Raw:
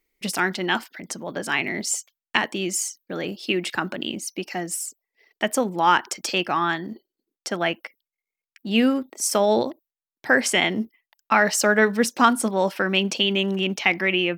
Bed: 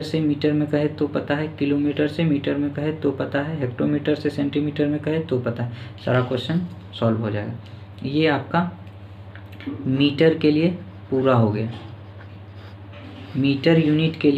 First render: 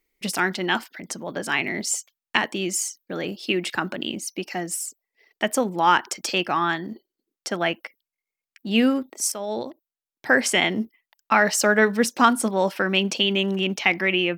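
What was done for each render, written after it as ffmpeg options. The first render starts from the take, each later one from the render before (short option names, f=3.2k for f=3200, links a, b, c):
-filter_complex "[0:a]asplit=2[a][b];[a]atrim=end=9.32,asetpts=PTS-STARTPTS,afade=t=out:st=9.316:d=0.004:c=hsin:silence=0.177828[c];[b]atrim=start=9.32,asetpts=PTS-STARTPTS,afade=t=in:d=0.96:silence=0.177828[d];[c][d]concat=n=2:v=0:a=1"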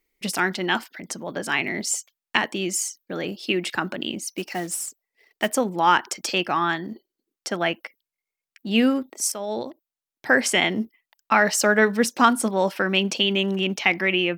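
-filter_complex "[0:a]asplit=3[a][b][c];[a]afade=t=out:st=4.31:d=0.02[d];[b]acrusher=bits=4:mode=log:mix=0:aa=0.000001,afade=t=in:st=4.31:d=0.02,afade=t=out:st=5.48:d=0.02[e];[c]afade=t=in:st=5.48:d=0.02[f];[d][e][f]amix=inputs=3:normalize=0"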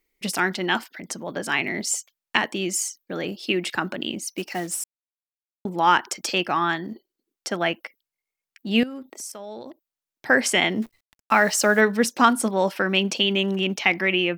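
-filter_complex "[0:a]asettb=1/sr,asplit=3[a][b][c];[a]atrim=end=8.834[d];[b]atrim=start=8.83:end=10.3,asetpts=PTS-STARTPTS,afade=t=in:d=0.004:c=qsin,afade=t=out:st=1.466:d=0.004:c=qsin,acompressor=threshold=-33dB:ratio=5:attack=3.2:release=140:knee=1:detection=peak[e];[c]atrim=start=10.296[f];[d][e]acrossfade=d=0.004:c1=hsin:c2=qsin[g];[g][f]acrossfade=d=0.004:c1=qsin:c2=hsin,asettb=1/sr,asplit=3[h][i][j];[h]atrim=end=10.824[k];[i]atrim=start=10.82:end=11.81,asetpts=PTS-STARTPTS,afade=t=in:d=0.004:c=qsin,afade=t=out:st=0.986:d=0.004:c=qsin,acrusher=bits=8:dc=4:mix=0:aa=0.000001[l];[j]atrim=start=11.806[m];[k][l]acrossfade=d=0.004:c1=hsin:c2=qsin[n];[n][m]acrossfade=d=0.004:c1=qsin:c2=hsin,asplit=3[o][p][q];[o]atrim=end=4.84,asetpts=PTS-STARTPTS,afade=t=out:st=4.836:d=0.004:c=hsin[r];[p]atrim=start=4.84:end=5.65,asetpts=PTS-STARTPTS,volume=0[s];[q]atrim=start=5.65,asetpts=PTS-STARTPTS,afade=t=in:d=0.004:c=hsin[t];[r][s][t]concat=n=3:v=0:a=1"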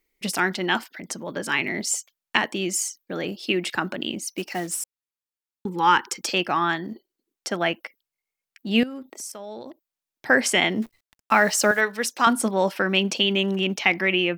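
-filter_complex "[0:a]asettb=1/sr,asplit=3[a][b][c];[a]atrim=end=1.224[d];[b]atrim=start=1.22:end=1.69,asetpts=PTS-STARTPTS,afade=t=in:d=0.004:c=qsin,afade=t=out:st=0.466:d=0.004:c=qsin,bandreject=f=720:w=5.6[e];[c]atrim=start=1.686[f];[d][e]acrossfade=d=0.004:c1=hsin:c2=qsin[g];[g][f]acrossfade=d=0.004:c1=qsin:c2=hsin,asettb=1/sr,asplit=3[h][i][j];[h]atrim=end=4.694[k];[i]atrim=start=4.69:end=6.23,asetpts=PTS-STARTPTS,afade=t=in:d=0.004:c=qsin,afade=t=out:st=1.536:d=0.004:c=qsin,asuperstop=centerf=650:order=12:qfactor=2.4[l];[j]atrim=start=6.226[m];[k][l]acrossfade=d=0.004:c1=hsin:c2=qsin[n];[n][m]acrossfade=d=0.004:c1=qsin:c2=hsin,asettb=1/sr,asplit=3[o][p][q];[o]atrim=end=11.714[r];[p]atrim=start=11.71:end=12.27,asetpts=PTS-STARTPTS,afade=t=in:d=0.004:c=qsin,afade=t=out:st=0.556:d=0.004:c=qsin,highpass=f=890:p=1[s];[q]atrim=start=12.266[t];[r][s]acrossfade=d=0.004:c1=hsin:c2=qsin[u];[u][t]acrossfade=d=0.004:c1=qsin:c2=hsin"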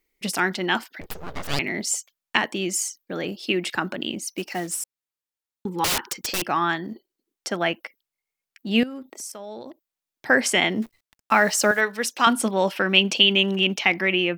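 -filter_complex "[0:a]asettb=1/sr,asplit=3[a][b][c];[a]atrim=end=1.014[d];[b]atrim=start=1.01:end=1.59,asetpts=PTS-STARTPTS,afade=t=in:d=0.004:c=qsin,afade=t=out:st=0.576:d=0.004:c=qsin,aeval=exprs='abs(val(0))':c=same[e];[c]atrim=start=1.586[f];[d][e]acrossfade=d=0.004:c1=hsin:c2=qsin[g];[g][f]acrossfade=d=0.004:c1=qsin:c2=hsin,asettb=1/sr,asplit=3[h][i][j];[h]atrim=end=5.844[k];[i]atrim=start=5.84:end=6.48,asetpts=PTS-STARTPTS,afade=t=in:d=0.004:c=qsin,afade=t=out:st=0.636:d=0.004:c=qsin,aeval=exprs='(mod(7.94*val(0)+1,2)-1)/7.94':c=same[l];[j]atrim=start=6.476[m];[k][l]acrossfade=d=0.004:c1=hsin:c2=qsin[n];[n][m]acrossfade=d=0.004:c1=qsin:c2=hsin,asettb=1/sr,asplit=3[o][p][q];[o]atrim=end=12.074[r];[p]atrim=start=12.07:end=13.81,asetpts=PTS-STARTPTS,afade=t=in:d=0.004:c=qsin,afade=t=out:st=1.736:d=0.004:c=qsin,equalizer=f=2.9k:w=2.2:g=6.5[s];[q]atrim=start=13.806[t];[r][s]acrossfade=d=0.004:c1=hsin:c2=qsin[u];[u][t]acrossfade=d=0.004:c1=qsin:c2=hsin"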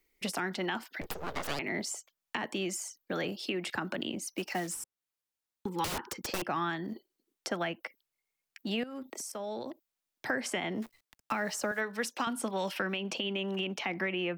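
-filter_complex "[0:a]alimiter=limit=-13dB:level=0:latency=1:release=217,acrossover=split=240|530|1500[a][b][c][d];[a]acompressor=threshold=-41dB:ratio=4[e];[b]acompressor=threshold=-42dB:ratio=4[f];[c]acompressor=threshold=-36dB:ratio=4[g];[d]acompressor=threshold=-39dB:ratio=4[h];[e][f][g][h]amix=inputs=4:normalize=0"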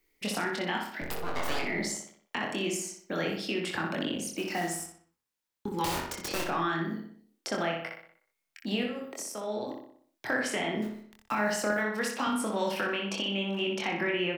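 -filter_complex "[0:a]asplit=2[a][b];[b]adelay=24,volume=-3.5dB[c];[a][c]amix=inputs=2:normalize=0,asplit=2[d][e];[e]adelay=61,lowpass=f=4.3k:p=1,volume=-3.5dB,asplit=2[f][g];[g]adelay=61,lowpass=f=4.3k:p=1,volume=0.51,asplit=2[h][i];[i]adelay=61,lowpass=f=4.3k:p=1,volume=0.51,asplit=2[j][k];[k]adelay=61,lowpass=f=4.3k:p=1,volume=0.51,asplit=2[l][m];[m]adelay=61,lowpass=f=4.3k:p=1,volume=0.51,asplit=2[n][o];[o]adelay=61,lowpass=f=4.3k:p=1,volume=0.51,asplit=2[p][q];[q]adelay=61,lowpass=f=4.3k:p=1,volume=0.51[r];[f][h][j][l][n][p][r]amix=inputs=7:normalize=0[s];[d][s]amix=inputs=2:normalize=0"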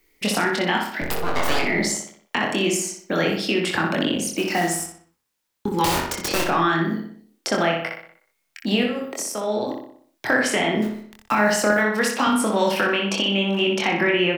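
-af "volume=10dB"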